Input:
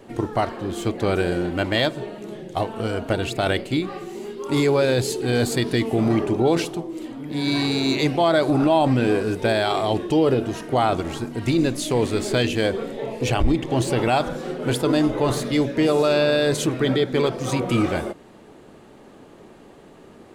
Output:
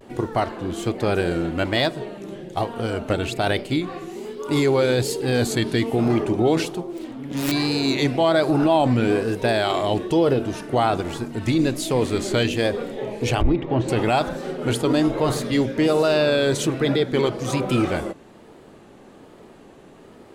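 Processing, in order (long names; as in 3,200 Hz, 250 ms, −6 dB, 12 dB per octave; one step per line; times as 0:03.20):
0:06.87–0:07.51: phase distortion by the signal itself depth 0.55 ms
0:13.41–0:13.89: low-pass filter 2,200 Hz 12 dB per octave
pitch vibrato 1.2 Hz 90 cents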